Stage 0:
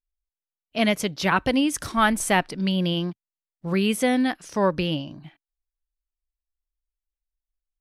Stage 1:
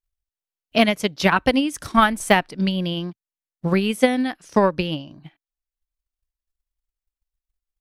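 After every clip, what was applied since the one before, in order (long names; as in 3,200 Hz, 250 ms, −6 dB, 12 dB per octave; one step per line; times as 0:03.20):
transient designer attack +11 dB, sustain −3 dB
de-essing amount 40%
level −1 dB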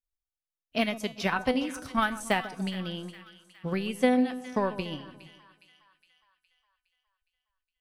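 tuned comb filter 250 Hz, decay 0.35 s, harmonics all, mix 70%
echo with a time of its own for lows and highs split 1,200 Hz, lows 143 ms, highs 413 ms, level −14.5 dB
level −1.5 dB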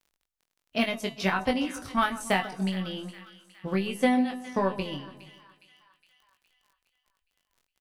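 surface crackle 21 per second −51 dBFS
double-tracking delay 21 ms −4.5 dB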